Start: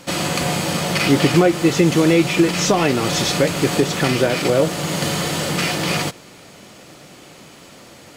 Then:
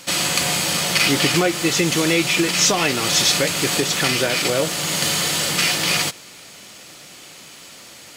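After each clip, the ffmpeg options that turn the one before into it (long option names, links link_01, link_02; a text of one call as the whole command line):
ffmpeg -i in.wav -af "tiltshelf=frequency=1400:gain=-6.5" out.wav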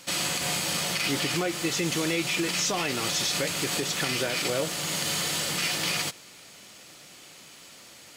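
ffmpeg -i in.wav -af "alimiter=limit=-9.5dB:level=0:latency=1:release=69,volume=-7.5dB" out.wav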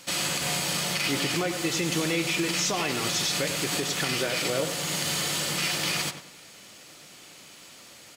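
ffmpeg -i in.wav -filter_complex "[0:a]asplit=2[link_01][link_02];[link_02]adelay=96,lowpass=frequency=2600:poles=1,volume=-8.5dB,asplit=2[link_03][link_04];[link_04]adelay=96,lowpass=frequency=2600:poles=1,volume=0.34,asplit=2[link_05][link_06];[link_06]adelay=96,lowpass=frequency=2600:poles=1,volume=0.34,asplit=2[link_07][link_08];[link_08]adelay=96,lowpass=frequency=2600:poles=1,volume=0.34[link_09];[link_01][link_03][link_05][link_07][link_09]amix=inputs=5:normalize=0" out.wav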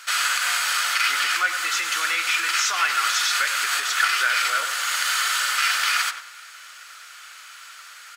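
ffmpeg -i in.wav -af "highpass=frequency=1400:width_type=q:width=5.4,volume=3dB" out.wav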